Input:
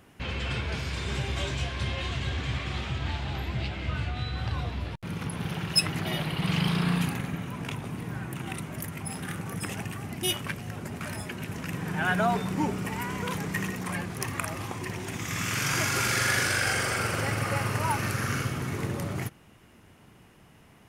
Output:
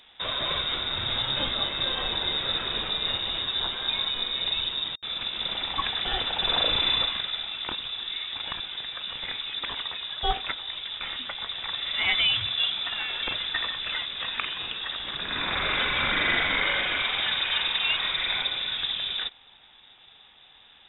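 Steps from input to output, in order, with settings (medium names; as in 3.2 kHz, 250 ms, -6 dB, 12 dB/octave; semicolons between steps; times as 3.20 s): frequency inversion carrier 3.7 kHz; tilt EQ -1.5 dB/octave; trim +3.5 dB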